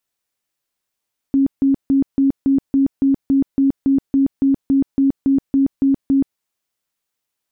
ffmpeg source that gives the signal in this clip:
-f lavfi -i "aevalsrc='0.282*sin(2*PI*273*mod(t,0.28))*lt(mod(t,0.28),34/273)':d=5.04:s=44100"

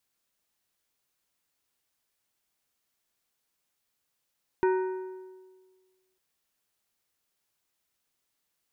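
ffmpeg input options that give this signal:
-f lavfi -i "aevalsrc='0.1*pow(10,-3*t/1.58)*sin(2*PI*374*t)+0.0447*pow(10,-3*t/1.2)*sin(2*PI*935*t)+0.02*pow(10,-3*t/1.042)*sin(2*PI*1496*t)+0.00891*pow(10,-3*t/0.975)*sin(2*PI*1870*t)+0.00398*pow(10,-3*t/0.901)*sin(2*PI*2431*t)':d=1.55:s=44100"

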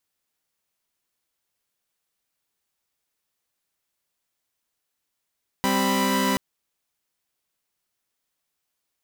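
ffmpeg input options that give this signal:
-f lavfi -i "aevalsrc='0.0794*((2*mod(196*t,1)-1)+(2*mod(261.63*t,1)-1)+(2*mod(987.77*t,1)-1))':d=0.73:s=44100"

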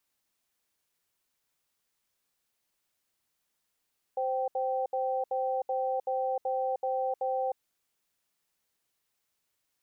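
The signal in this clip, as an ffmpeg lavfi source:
-f lavfi -i "aevalsrc='0.0316*(sin(2*PI*521*t)+sin(2*PI*778*t))*clip(min(mod(t,0.38),0.31-mod(t,0.38))/0.005,0,1)':d=3.38:s=44100"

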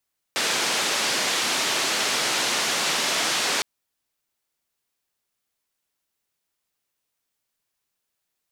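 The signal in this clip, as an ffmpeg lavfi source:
-f lavfi -i "anoisesrc=c=white:d=3.26:r=44100:seed=1,highpass=f=230,lowpass=f=5700,volume=-13.4dB"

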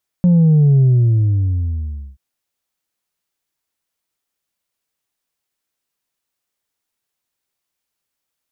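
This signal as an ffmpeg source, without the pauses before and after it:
-f lavfi -i "aevalsrc='0.376*clip((1.93-t)/1.37,0,1)*tanh(1.26*sin(2*PI*180*1.93/log(65/180)*(exp(log(65/180)*t/1.93)-1)))/tanh(1.26)':d=1.93:s=44100"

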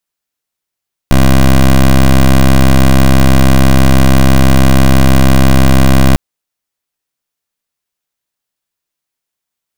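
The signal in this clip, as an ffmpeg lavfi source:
-f lavfi -i "aevalsrc='0.562*(2*lt(mod(66.1*t,1),0.15)-1)':d=5.05:s=44100"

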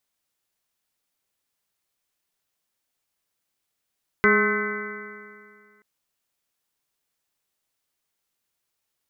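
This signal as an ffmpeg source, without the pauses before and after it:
-f lavfi -i "aevalsrc='0.0794*pow(10,-3*t/2.14)*sin(2*PI*207.23*t)+0.119*pow(10,-3*t/2.14)*sin(2*PI*415.82*t)+0.0141*pow(10,-3*t/2.14)*sin(2*PI*627.12*t)+0.0106*pow(10,-3*t/2.14)*sin(2*PI*842.45*t)+0.0562*pow(10,-3*t/2.14)*sin(2*PI*1063.08*t)+0.0631*pow(10,-3*t/2.14)*sin(2*PI*1290.25*t)+0.112*pow(10,-3*t/2.14)*sin(2*PI*1525.1*t)+0.0282*pow(10,-3*t/2.14)*sin(2*PI*1768.74*t)+0.112*pow(10,-3*t/2.14)*sin(2*PI*2022.19*t)+0.0178*pow(10,-3*t/2.14)*sin(2*PI*2286.39*t)':d=1.58:s=44100"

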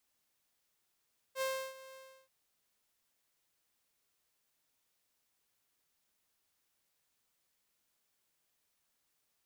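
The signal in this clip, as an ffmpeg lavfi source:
-f lavfi -i "aevalsrc='0.0335*(2*mod(529*t,1)-1)':d=0.935:s=44100,afade=t=in:d=0.065,afade=t=out:st=0.065:d=0.32:silence=0.119,afade=t=out:st=0.6:d=0.335"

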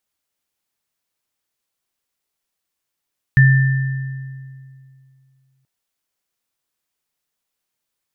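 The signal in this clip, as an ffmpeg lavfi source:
-f lavfi -i "aevalsrc='0.473*pow(10,-3*t/2.45)*sin(2*PI*133*t)+0.237*pow(10,-3*t/1.67)*sin(2*PI*1780*t)':d=2.28:s=44100"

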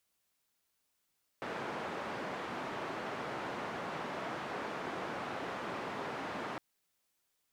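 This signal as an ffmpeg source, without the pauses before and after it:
-f lavfi -i "anoisesrc=c=white:d=5.16:r=44100:seed=1,highpass=f=160,lowpass=f=1200,volume=-22.4dB"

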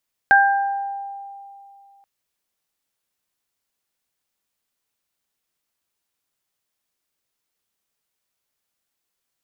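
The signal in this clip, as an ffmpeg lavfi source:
-f lavfi -i "aevalsrc='0.251*pow(10,-3*t/2.62)*sin(2*PI*795*t)+0.355*pow(10,-3*t/0.85)*sin(2*PI*1590*t)':d=1.73:s=44100"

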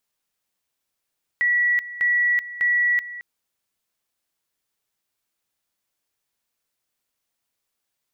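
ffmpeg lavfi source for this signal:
-f lavfi -i "aevalsrc='pow(10,(-16.5-15.5*gte(mod(t,0.6),0.38))/20)*sin(2*PI*1940*t)':d=1.8:s=44100"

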